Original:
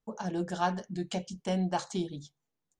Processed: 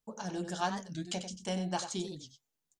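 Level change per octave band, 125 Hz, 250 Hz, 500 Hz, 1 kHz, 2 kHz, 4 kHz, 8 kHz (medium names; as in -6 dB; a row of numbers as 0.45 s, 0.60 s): -4.5 dB, -4.5 dB, -4.0 dB, -3.5 dB, -1.5 dB, +2.0 dB, +4.0 dB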